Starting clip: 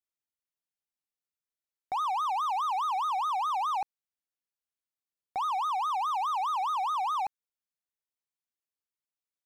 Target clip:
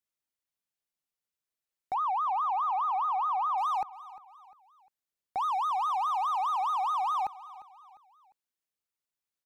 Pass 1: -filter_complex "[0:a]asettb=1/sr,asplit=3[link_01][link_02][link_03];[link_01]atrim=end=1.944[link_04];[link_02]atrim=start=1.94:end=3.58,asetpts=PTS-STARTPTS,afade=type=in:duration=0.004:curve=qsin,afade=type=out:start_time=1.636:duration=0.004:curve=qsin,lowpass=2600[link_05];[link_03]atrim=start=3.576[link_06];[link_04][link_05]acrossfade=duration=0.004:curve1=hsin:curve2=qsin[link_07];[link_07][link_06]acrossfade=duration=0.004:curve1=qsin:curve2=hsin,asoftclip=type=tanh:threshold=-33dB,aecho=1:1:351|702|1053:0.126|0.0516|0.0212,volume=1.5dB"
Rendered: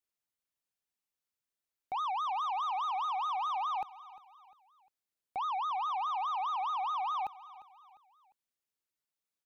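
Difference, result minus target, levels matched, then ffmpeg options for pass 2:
soft clipping: distortion +15 dB
-filter_complex "[0:a]asettb=1/sr,asplit=3[link_01][link_02][link_03];[link_01]atrim=end=1.944[link_04];[link_02]atrim=start=1.94:end=3.58,asetpts=PTS-STARTPTS,afade=type=in:duration=0.004:curve=qsin,afade=type=out:start_time=1.636:duration=0.004:curve=qsin,lowpass=2600[link_05];[link_03]atrim=start=3.576[link_06];[link_04][link_05]acrossfade=duration=0.004:curve1=hsin:curve2=qsin[link_07];[link_07][link_06]acrossfade=duration=0.004:curve1=qsin:curve2=hsin,asoftclip=type=tanh:threshold=-22.5dB,aecho=1:1:351|702|1053:0.126|0.0516|0.0212,volume=1.5dB"

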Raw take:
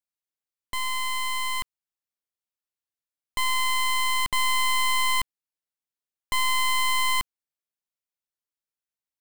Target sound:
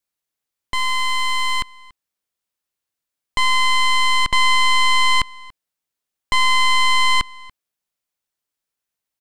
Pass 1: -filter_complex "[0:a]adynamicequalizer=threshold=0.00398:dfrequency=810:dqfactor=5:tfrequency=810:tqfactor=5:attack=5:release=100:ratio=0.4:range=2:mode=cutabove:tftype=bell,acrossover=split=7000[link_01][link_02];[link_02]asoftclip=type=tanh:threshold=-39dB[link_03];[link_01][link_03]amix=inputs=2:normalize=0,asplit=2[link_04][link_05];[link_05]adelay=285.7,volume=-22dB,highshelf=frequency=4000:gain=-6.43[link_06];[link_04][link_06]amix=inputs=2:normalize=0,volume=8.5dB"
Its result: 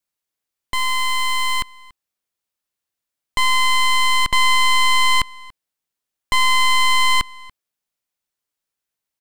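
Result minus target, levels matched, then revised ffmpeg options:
soft clipping: distortion −4 dB
-filter_complex "[0:a]adynamicequalizer=threshold=0.00398:dfrequency=810:dqfactor=5:tfrequency=810:tqfactor=5:attack=5:release=100:ratio=0.4:range=2:mode=cutabove:tftype=bell,acrossover=split=7000[link_01][link_02];[link_02]asoftclip=type=tanh:threshold=-49.5dB[link_03];[link_01][link_03]amix=inputs=2:normalize=0,asplit=2[link_04][link_05];[link_05]adelay=285.7,volume=-22dB,highshelf=frequency=4000:gain=-6.43[link_06];[link_04][link_06]amix=inputs=2:normalize=0,volume=8.5dB"

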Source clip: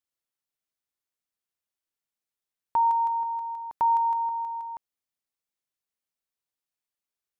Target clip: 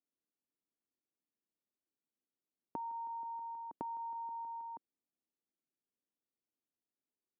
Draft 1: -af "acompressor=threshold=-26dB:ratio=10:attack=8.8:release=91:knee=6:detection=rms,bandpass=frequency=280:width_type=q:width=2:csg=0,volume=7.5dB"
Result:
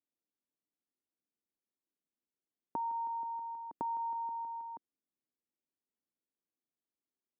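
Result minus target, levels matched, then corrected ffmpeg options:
downward compressor: peak gain reduction −6 dB
-af "acompressor=threshold=-32.5dB:ratio=10:attack=8.8:release=91:knee=6:detection=rms,bandpass=frequency=280:width_type=q:width=2:csg=0,volume=7.5dB"

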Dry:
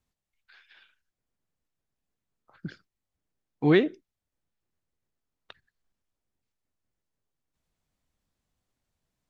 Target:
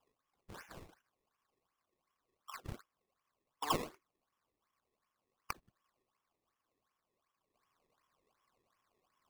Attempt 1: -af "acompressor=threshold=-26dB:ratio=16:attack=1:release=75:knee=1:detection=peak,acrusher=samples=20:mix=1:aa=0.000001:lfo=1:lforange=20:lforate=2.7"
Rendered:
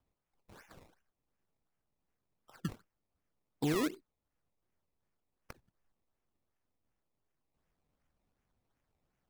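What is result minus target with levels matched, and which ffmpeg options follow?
1,000 Hz band −12.0 dB
-af "acompressor=threshold=-26dB:ratio=16:attack=1:release=75:knee=1:detection=peak,highpass=frequency=1100:width_type=q:width=12,acrusher=samples=20:mix=1:aa=0.000001:lfo=1:lforange=20:lforate=2.7"

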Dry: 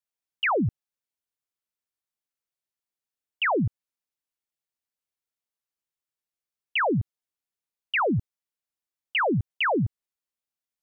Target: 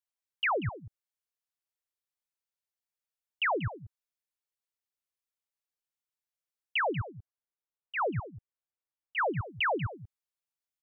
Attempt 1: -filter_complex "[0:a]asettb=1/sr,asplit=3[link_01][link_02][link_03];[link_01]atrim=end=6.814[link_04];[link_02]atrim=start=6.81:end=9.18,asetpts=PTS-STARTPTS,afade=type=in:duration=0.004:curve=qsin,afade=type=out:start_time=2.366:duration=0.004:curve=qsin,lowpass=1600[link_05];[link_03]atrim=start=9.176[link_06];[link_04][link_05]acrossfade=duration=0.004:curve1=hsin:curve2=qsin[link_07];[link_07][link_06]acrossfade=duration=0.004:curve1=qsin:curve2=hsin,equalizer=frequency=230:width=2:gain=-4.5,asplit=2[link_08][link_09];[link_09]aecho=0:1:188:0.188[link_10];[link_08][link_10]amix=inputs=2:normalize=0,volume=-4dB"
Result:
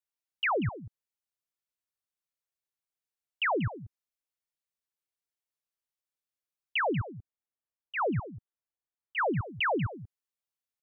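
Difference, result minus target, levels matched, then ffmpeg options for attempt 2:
250 Hz band +4.5 dB
-filter_complex "[0:a]asettb=1/sr,asplit=3[link_01][link_02][link_03];[link_01]atrim=end=6.814[link_04];[link_02]atrim=start=6.81:end=9.18,asetpts=PTS-STARTPTS,afade=type=in:duration=0.004:curve=qsin,afade=type=out:start_time=2.366:duration=0.004:curve=qsin,lowpass=1600[link_05];[link_03]atrim=start=9.176[link_06];[link_04][link_05]acrossfade=duration=0.004:curve1=hsin:curve2=qsin[link_07];[link_07][link_06]acrossfade=duration=0.004:curve1=qsin:curve2=hsin,equalizer=frequency=230:width=2:gain=-15,asplit=2[link_08][link_09];[link_09]aecho=0:1:188:0.188[link_10];[link_08][link_10]amix=inputs=2:normalize=0,volume=-4dB"

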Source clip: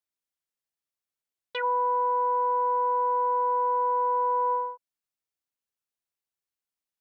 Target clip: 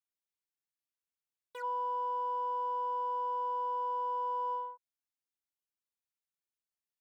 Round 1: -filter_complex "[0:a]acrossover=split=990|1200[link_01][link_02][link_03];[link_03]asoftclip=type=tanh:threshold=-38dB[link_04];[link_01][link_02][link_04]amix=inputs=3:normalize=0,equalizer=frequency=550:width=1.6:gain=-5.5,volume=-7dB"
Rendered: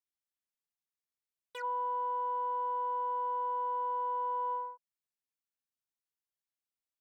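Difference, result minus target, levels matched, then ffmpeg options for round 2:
soft clipping: distortion −6 dB
-filter_complex "[0:a]acrossover=split=990|1200[link_01][link_02][link_03];[link_03]asoftclip=type=tanh:threshold=-47.5dB[link_04];[link_01][link_02][link_04]amix=inputs=3:normalize=0,equalizer=frequency=550:width=1.6:gain=-5.5,volume=-7dB"

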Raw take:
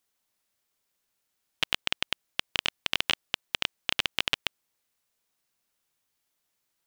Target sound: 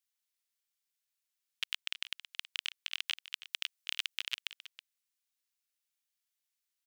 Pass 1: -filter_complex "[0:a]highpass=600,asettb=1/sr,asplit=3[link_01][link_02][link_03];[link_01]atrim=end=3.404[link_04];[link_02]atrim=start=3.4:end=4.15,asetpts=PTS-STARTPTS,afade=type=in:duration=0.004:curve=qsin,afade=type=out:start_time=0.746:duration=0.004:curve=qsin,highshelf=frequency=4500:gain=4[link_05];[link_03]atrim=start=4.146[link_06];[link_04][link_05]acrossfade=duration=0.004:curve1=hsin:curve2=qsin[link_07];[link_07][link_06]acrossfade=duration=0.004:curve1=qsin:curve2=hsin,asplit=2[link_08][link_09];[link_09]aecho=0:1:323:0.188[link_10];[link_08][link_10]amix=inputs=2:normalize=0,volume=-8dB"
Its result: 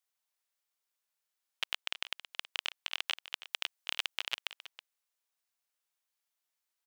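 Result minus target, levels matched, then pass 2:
500 Hz band +16.5 dB
-filter_complex "[0:a]highpass=1900,asettb=1/sr,asplit=3[link_01][link_02][link_03];[link_01]atrim=end=3.404[link_04];[link_02]atrim=start=3.4:end=4.15,asetpts=PTS-STARTPTS,afade=type=in:duration=0.004:curve=qsin,afade=type=out:start_time=0.746:duration=0.004:curve=qsin,highshelf=frequency=4500:gain=4[link_05];[link_03]atrim=start=4.146[link_06];[link_04][link_05]acrossfade=duration=0.004:curve1=hsin:curve2=qsin[link_07];[link_07][link_06]acrossfade=duration=0.004:curve1=qsin:curve2=hsin,asplit=2[link_08][link_09];[link_09]aecho=0:1:323:0.188[link_10];[link_08][link_10]amix=inputs=2:normalize=0,volume=-8dB"

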